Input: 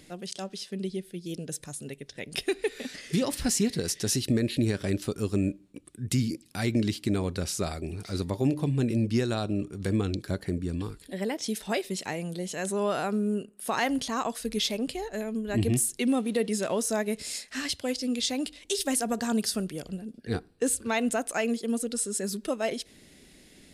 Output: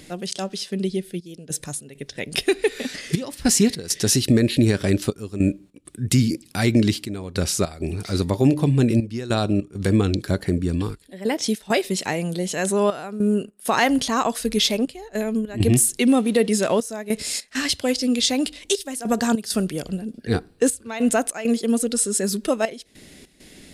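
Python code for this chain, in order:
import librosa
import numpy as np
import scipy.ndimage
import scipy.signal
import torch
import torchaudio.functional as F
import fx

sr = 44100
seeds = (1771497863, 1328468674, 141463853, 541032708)

y = fx.step_gate(x, sr, bpm=100, pattern='xxxxxxxx..xx.', floor_db=-12.0, edge_ms=4.5)
y = y * 10.0 ** (8.5 / 20.0)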